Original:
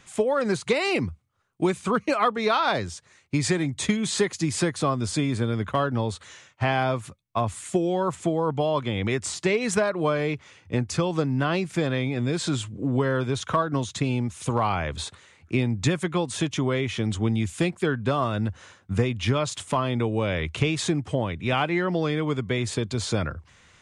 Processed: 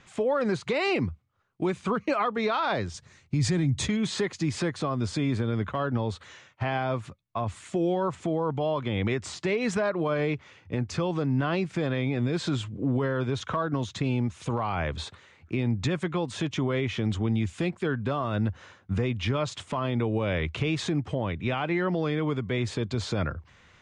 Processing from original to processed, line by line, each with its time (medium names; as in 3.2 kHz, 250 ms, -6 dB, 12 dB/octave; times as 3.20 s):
2.94–3.88 s: tone controls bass +12 dB, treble +8 dB
whole clip: low-pass 6.4 kHz 12 dB/octave; treble shelf 4.5 kHz -7 dB; peak limiter -18 dBFS